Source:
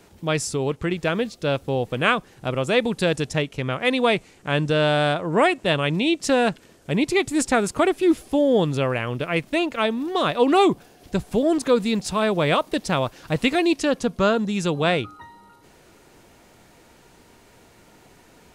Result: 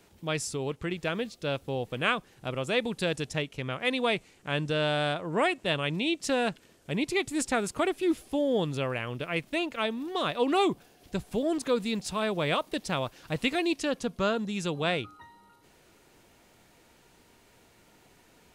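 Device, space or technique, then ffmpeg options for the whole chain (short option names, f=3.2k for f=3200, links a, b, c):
presence and air boost: -af "equalizer=f=3k:t=o:w=1.4:g=3,highshelf=f=10k:g=5,volume=-8.5dB"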